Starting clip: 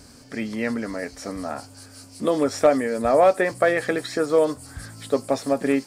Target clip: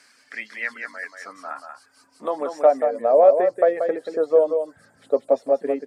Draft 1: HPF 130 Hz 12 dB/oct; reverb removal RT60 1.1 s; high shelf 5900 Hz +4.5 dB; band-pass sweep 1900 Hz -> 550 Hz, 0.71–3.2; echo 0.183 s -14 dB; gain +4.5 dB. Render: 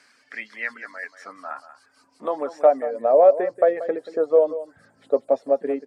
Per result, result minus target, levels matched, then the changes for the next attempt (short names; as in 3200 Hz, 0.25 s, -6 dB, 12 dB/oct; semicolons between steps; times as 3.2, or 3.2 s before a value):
8000 Hz band -5.5 dB; echo-to-direct -7 dB
change: high shelf 5900 Hz +13.5 dB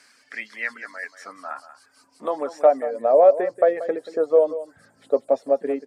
echo-to-direct -7 dB
change: echo 0.183 s -7 dB